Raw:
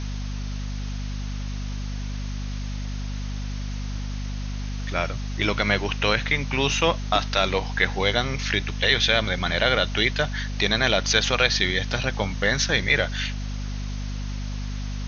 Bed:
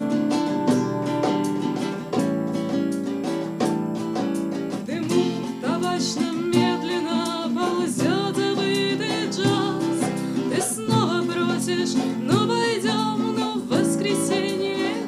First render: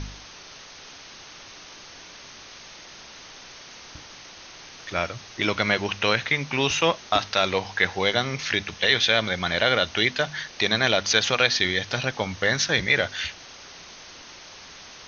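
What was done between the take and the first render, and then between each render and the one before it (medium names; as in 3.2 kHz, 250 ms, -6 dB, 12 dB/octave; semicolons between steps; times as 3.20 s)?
de-hum 50 Hz, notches 5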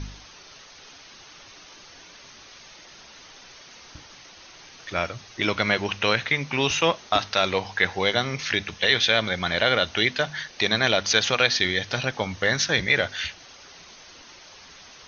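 noise reduction 6 dB, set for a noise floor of -45 dBFS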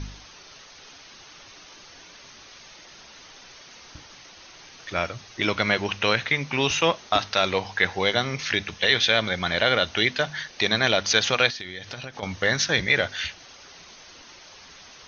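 11.50–12.23 s: compression, threshold -32 dBFS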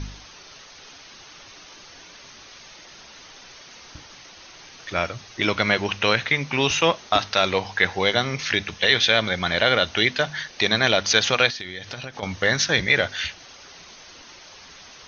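trim +2 dB; peak limiter -3 dBFS, peak gain reduction 1 dB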